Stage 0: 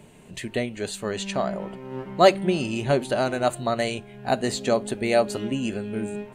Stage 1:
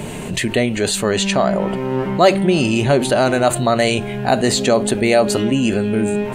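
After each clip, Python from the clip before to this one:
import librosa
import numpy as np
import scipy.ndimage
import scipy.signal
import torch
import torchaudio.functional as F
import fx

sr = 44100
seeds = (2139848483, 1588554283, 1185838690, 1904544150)

y = fx.env_flatten(x, sr, amount_pct=50)
y = y * 10.0 ** (2.5 / 20.0)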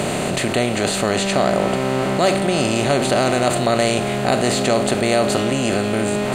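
y = fx.bin_compress(x, sr, power=0.4)
y = y * 10.0 ** (-8.0 / 20.0)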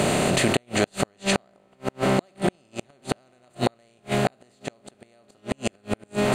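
y = fx.gate_flip(x, sr, shuts_db=-8.0, range_db=-41)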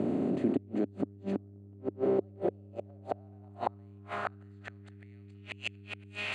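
y = fx.filter_sweep_bandpass(x, sr, from_hz=280.0, to_hz=2600.0, start_s=1.56, end_s=5.56, q=3.3)
y = fx.dmg_buzz(y, sr, base_hz=100.0, harmonics=4, level_db=-51.0, tilt_db=-6, odd_only=False)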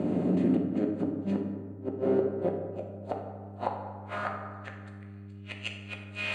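y = fx.rev_fdn(x, sr, rt60_s=1.6, lf_ratio=1.2, hf_ratio=0.45, size_ms=33.0, drr_db=0.5)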